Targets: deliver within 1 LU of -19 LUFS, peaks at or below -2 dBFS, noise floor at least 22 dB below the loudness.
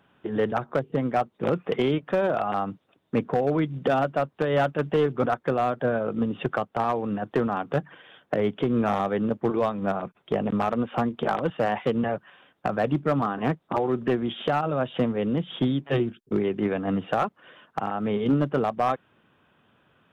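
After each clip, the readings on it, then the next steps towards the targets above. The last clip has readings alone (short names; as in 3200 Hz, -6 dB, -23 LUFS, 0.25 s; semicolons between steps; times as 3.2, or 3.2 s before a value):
clipped 0.8%; flat tops at -15.5 dBFS; loudness -26.5 LUFS; peak -15.5 dBFS; loudness target -19.0 LUFS
-> clip repair -15.5 dBFS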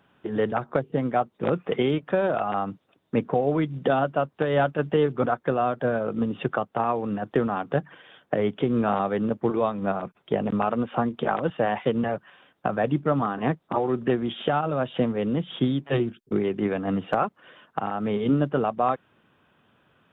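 clipped 0.0%; loudness -26.0 LUFS; peak -7.0 dBFS; loudness target -19.0 LUFS
-> gain +7 dB; limiter -2 dBFS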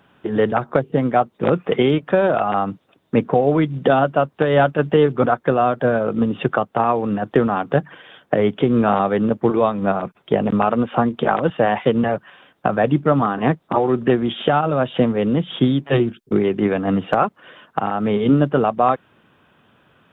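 loudness -19.0 LUFS; peak -2.0 dBFS; noise floor -61 dBFS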